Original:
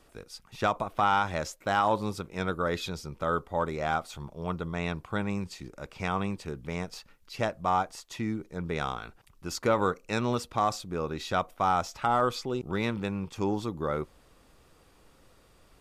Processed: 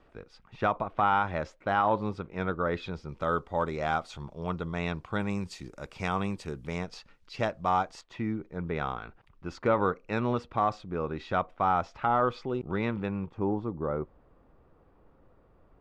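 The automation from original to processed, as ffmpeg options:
ffmpeg -i in.wav -af "asetnsamples=nb_out_samples=441:pad=0,asendcmd='3.09 lowpass f 5700;5.2 lowpass f 9900;6.78 lowpass f 5200;8.01 lowpass f 2400;13.26 lowpass f 1100',lowpass=2400" out.wav

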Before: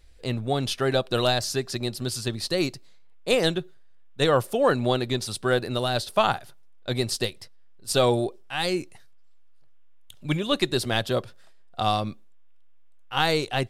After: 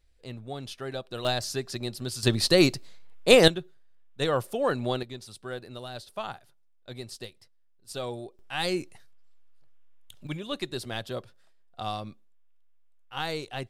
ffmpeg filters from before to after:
ffmpeg -i in.wav -af "asetnsamples=nb_out_samples=441:pad=0,asendcmd='1.25 volume volume -4.5dB;2.23 volume volume 5.5dB;3.48 volume volume -5.5dB;5.03 volume volume -14dB;8.39 volume volume -2.5dB;10.27 volume volume -9.5dB',volume=-12dB" out.wav

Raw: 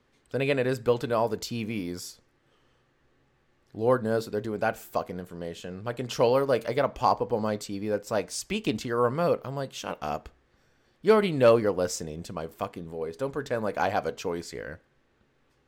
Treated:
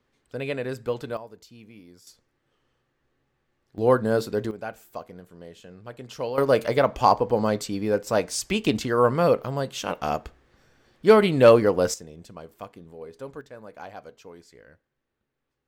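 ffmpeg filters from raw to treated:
ffmpeg -i in.wav -af "asetnsamples=nb_out_samples=441:pad=0,asendcmd='1.17 volume volume -16dB;2.07 volume volume -6dB;3.78 volume volume 4dB;4.51 volume volume -7.5dB;6.38 volume volume 5dB;11.94 volume volume -7dB;13.41 volume volume -14dB',volume=-4dB" out.wav

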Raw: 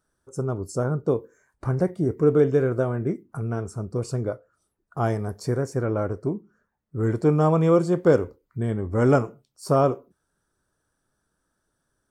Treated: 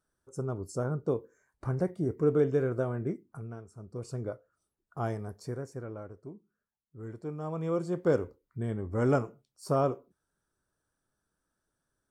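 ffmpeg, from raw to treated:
ffmpeg -i in.wav -af "volume=15dB,afade=type=out:start_time=3.08:duration=0.59:silence=0.237137,afade=type=in:start_time=3.67:duration=0.58:silence=0.281838,afade=type=out:start_time=4.99:duration=1.1:silence=0.316228,afade=type=in:start_time=7.41:duration=0.79:silence=0.281838" out.wav

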